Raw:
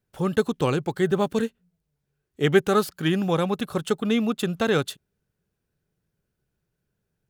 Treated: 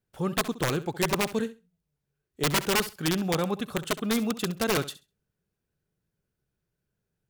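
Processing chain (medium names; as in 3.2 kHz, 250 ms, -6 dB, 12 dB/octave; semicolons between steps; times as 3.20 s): integer overflow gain 14 dB; flutter echo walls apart 11.4 m, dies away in 0.26 s; trim -4 dB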